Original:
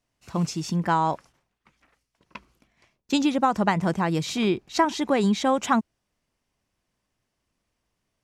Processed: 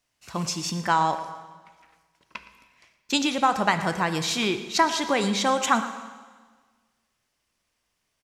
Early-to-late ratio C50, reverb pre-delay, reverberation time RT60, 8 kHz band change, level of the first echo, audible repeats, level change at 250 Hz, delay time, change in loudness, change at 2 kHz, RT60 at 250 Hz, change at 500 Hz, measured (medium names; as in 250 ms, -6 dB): 10.0 dB, 7 ms, 1.5 s, +6.0 dB, -15.0 dB, 1, -4.0 dB, 115 ms, 0.0 dB, +4.5 dB, 1.5 s, -1.5 dB